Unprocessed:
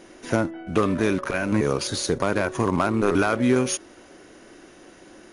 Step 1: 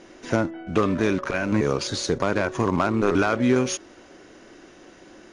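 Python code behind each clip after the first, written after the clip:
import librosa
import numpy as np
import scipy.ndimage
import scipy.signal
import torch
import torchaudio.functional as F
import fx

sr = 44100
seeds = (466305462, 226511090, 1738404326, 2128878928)

y = scipy.signal.sosfilt(scipy.signal.butter(4, 7400.0, 'lowpass', fs=sr, output='sos'), x)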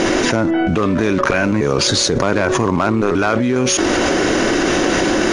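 y = fx.env_flatten(x, sr, amount_pct=100)
y = y * 10.0 ** (1.0 / 20.0)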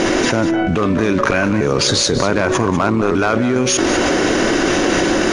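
y = x + 10.0 ** (-12.0 / 20.0) * np.pad(x, (int(196 * sr / 1000.0), 0))[:len(x)]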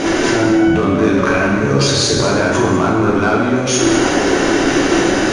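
y = fx.rev_plate(x, sr, seeds[0], rt60_s=1.5, hf_ratio=0.75, predelay_ms=0, drr_db=-3.5)
y = y * 10.0 ** (-4.0 / 20.0)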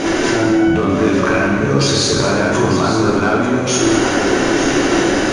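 y = x + 10.0 ** (-10.5 / 20.0) * np.pad(x, (int(894 * sr / 1000.0), 0))[:len(x)]
y = y * 10.0 ** (-1.0 / 20.0)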